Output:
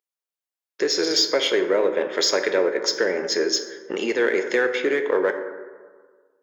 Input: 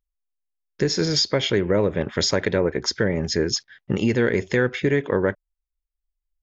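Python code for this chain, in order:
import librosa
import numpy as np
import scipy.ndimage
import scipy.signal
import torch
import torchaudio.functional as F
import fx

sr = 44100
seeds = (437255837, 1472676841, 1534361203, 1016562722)

p1 = scipy.signal.sosfilt(scipy.signal.butter(4, 340.0, 'highpass', fs=sr, output='sos'), x)
p2 = np.clip(10.0 ** (23.5 / 20.0) * p1, -1.0, 1.0) / 10.0 ** (23.5 / 20.0)
p3 = p1 + (p2 * 10.0 ** (-11.0 / 20.0))
y = fx.rev_plate(p3, sr, seeds[0], rt60_s=1.6, hf_ratio=0.4, predelay_ms=0, drr_db=6.5)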